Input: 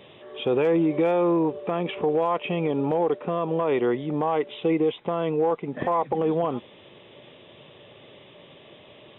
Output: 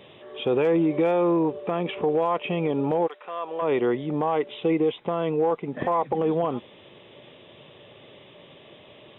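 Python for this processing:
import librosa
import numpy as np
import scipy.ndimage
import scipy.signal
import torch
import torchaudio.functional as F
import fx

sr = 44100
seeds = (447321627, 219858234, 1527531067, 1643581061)

y = fx.highpass(x, sr, hz=fx.line((3.06, 1400.0), (3.61, 560.0)), slope=12, at=(3.06, 3.61), fade=0.02)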